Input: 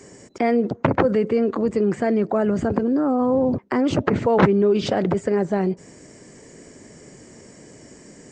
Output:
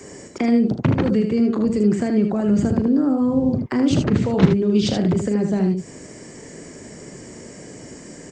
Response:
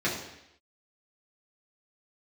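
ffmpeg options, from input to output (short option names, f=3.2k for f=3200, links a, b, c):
-filter_complex "[0:a]acrossover=split=300|3000[a][b][c];[b]acompressor=threshold=-36dB:ratio=4[d];[a][d][c]amix=inputs=3:normalize=0,aecho=1:1:38|77:0.251|0.501,volume=5dB"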